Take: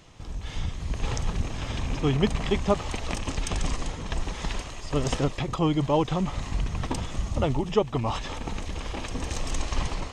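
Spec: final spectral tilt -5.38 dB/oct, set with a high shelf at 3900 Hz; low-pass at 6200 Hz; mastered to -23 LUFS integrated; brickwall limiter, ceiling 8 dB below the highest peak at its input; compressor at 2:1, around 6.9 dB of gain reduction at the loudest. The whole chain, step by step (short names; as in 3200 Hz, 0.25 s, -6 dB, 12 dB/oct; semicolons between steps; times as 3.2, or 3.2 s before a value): LPF 6200 Hz; high shelf 3900 Hz -3 dB; compressor 2:1, threshold -30 dBFS; gain +13 dB; limiter -11.5 dBFS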